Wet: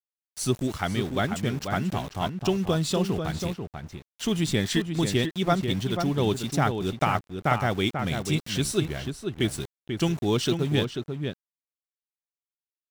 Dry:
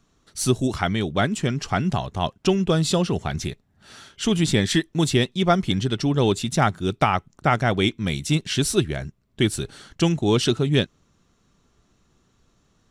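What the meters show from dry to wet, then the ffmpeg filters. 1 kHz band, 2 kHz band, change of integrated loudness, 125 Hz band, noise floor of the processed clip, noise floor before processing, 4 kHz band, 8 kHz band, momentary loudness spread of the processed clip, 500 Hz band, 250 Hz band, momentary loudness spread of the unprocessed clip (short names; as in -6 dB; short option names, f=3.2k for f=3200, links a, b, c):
-4.0 dB, -4.5 dB, -4.5 dB, -4.0 dB, under -85 dBFS, -65 dBFS, -4.5 dB, -5.0 dB, 8 LU, -4.0 dB, -4.0 dB, 8 LU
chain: -filter_complex "[0:a]aeval=exprs='val(0)*gte(abs(val(0)),0.0237)':c=same,asplit=2[a][b];[b]adelay=489.8,volume=-6dB,highshelf=f=4k:g=-11[c];[a][c]amix=inputs=2:normalize=0,volume=-5dB"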